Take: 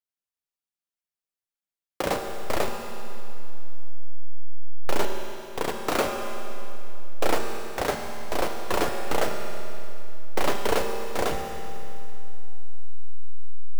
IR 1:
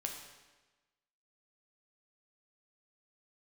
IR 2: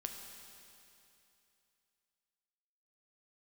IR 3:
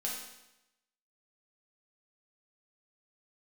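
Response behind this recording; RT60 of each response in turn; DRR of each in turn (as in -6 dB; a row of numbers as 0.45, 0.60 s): 2; 1.2, 2.8, 0.90 s; 1.5, 3.0, -4.0 dB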